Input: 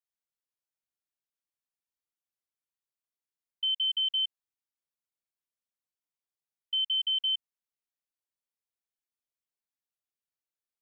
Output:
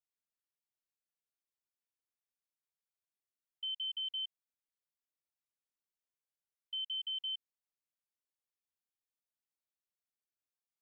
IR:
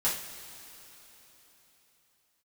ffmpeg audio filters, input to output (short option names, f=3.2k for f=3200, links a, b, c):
-af "alimiter=level_in=4dB:limit=-24dB:level=0:latency=1,volume=-4dB,volume=-6.5dB"